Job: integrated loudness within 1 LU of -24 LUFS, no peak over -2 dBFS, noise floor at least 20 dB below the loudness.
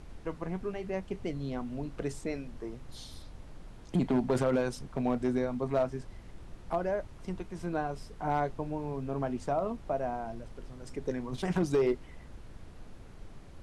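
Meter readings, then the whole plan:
clipped 0.4%; flat tops at -21.0 dBFS; noise floor -49 dBFS; noise floor target -54 dBFS; loudness -33.5 LUFS; peak -21.0 dBFS; loudness target -24.0 LUFS
-> clip repair -21 dBFS; noise print and reduce 6 dB; gain +9.5 dB

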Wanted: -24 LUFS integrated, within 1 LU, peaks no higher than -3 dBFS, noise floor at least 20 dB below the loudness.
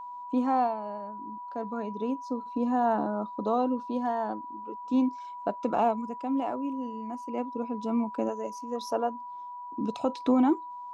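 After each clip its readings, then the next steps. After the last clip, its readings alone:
steady tone 980 Hz; tone level -38 dBFS; loudness -30.5 LUFS; peak -14.0 dBFS; loudness target -24.0 LUFS
-> notch 980 Hz, Q 30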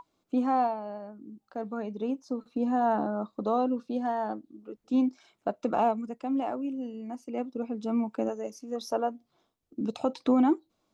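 steady tone none; loudness -30.5 LUFS; peak -14.5 dBFS; loudness target -24.0 LUFS
-> gain +6.5 dB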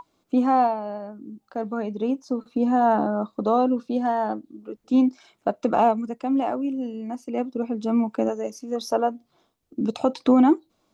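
loudness -24.0 LUFS; peak -8.0 dBFS; noise floor -71 dBFS

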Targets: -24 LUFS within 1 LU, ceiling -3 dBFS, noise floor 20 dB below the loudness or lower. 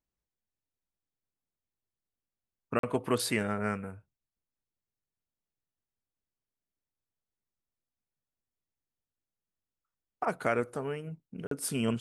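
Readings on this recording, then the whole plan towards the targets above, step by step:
dropouts 2; longest dropout 43 ms; loudness -32.5 LUFS; peak -13.0 dBFS; loudness target -24.0 LUFS
-> interpolate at 2.79/11.47, 43 ms; gain +8.5 dB

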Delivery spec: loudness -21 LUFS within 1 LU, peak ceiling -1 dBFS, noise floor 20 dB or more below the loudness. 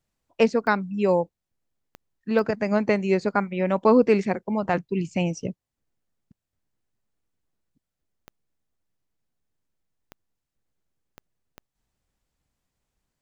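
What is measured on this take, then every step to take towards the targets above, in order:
clicks 7; loudness -23.5 LUFS; peak -6.0 dBFS; loudness target -21.0 LUFS
-> de-click; gain +2.5 dB

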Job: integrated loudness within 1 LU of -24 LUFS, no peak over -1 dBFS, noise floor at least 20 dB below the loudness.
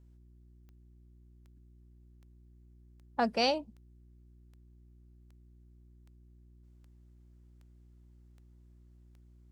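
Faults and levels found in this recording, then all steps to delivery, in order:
clicks 12; hum 60 Hz; harmonics up to 360 Hz; hum level -56 dBFS; loudness -31.5 LUFS; peak -17.5 dBFS; loudness target -24.0 LUFS
-> de-click; de-hum 60 Hz, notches 6; gain +7.5 dB

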